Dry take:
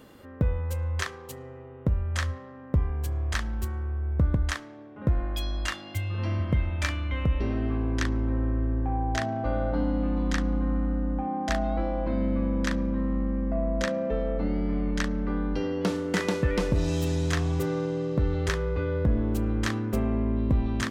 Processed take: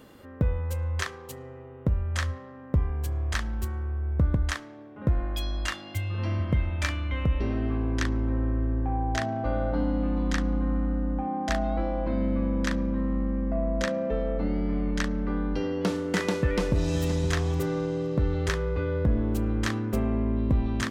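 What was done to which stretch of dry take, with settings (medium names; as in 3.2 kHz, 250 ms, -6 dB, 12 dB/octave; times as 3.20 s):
16.38–17.02 s: echo throw 520 ms, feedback 25%, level -12 dB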